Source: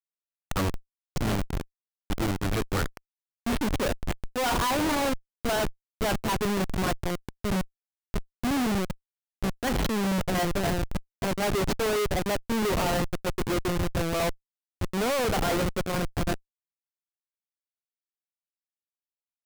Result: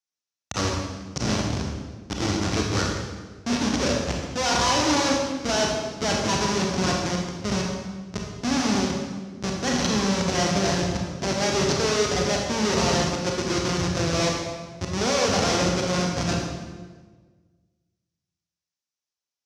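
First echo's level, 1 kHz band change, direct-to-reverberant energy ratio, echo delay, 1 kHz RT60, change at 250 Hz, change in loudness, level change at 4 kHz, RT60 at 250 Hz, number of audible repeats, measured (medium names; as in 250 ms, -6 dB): no echo, +3.5 dB, -0.5 dB, no echo, 1.3 s, +4.0 dB, +4.5 dB, +8.5 dB, 1.7 s, no echo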